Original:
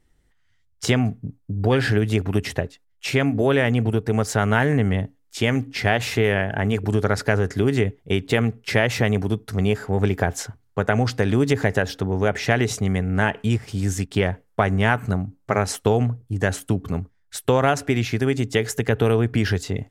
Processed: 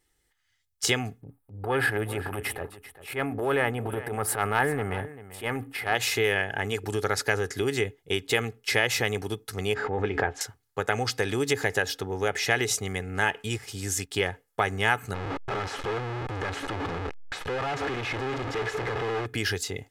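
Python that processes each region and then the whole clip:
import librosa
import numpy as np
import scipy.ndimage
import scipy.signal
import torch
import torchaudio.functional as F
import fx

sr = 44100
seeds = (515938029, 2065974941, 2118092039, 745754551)

y = fx.chain(x, sr, fx.curve_eq(hz=(480.0, 730.0, 1300.0, 3700.0, 6500.0, 9200.0), db=(0, 4, 3, -11, -20, -1)),
    fx.transient(attack_db=-11, sustain_db=5),
    fx.echo_single(ms=391, db=-15.5), at=(1.21, 5.95))
y = fx.chain(y, sr, fx.lowpass(hz=2300.0, slope=12),
    fx.doubler(ms=14.0, db=-11.0),
    fx.pre_swell(db_per_s=52.0), at=(9.74, 10.41))
y = fx.chain(y, sr, fx.clip_1bit(),
    fx.lowpass(hz=1800.0, slope=12), at=(15.14, 19.26))
y = fx.tilt_eq(y, sr, slope=2.5)
y = y + 0.42 * np.pad(y, (int(2.4 * sr / 1000.0), 0))[:len(y)]
y = y * 10.0 ** (-4.5 / 20.0)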